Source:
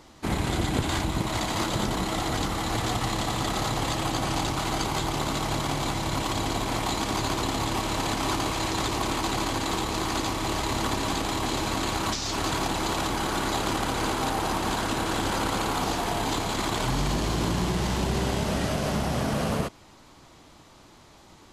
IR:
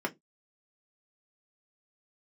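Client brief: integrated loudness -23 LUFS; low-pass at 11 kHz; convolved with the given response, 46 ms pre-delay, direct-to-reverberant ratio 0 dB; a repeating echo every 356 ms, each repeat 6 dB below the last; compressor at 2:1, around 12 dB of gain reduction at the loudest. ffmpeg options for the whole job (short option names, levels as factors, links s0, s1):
-filter_complex "[0:a]lowpass=11000,acompressor=threshold=0.00631:ratio=2,aecho=1:1:356|712|1068|1424|1780|2136:0.501|0.251|0.125|0.0626|0.0313|0.0157,asplit=2[s0][s1];[1:a]atrim=start_sample=2205,adelay=46[s2];[s1][s2]afir=irnorm=-1:irlink=0,volume=0.473[s3];[s0][s3]amix=inputs=2:normalize=0,volume=3.35"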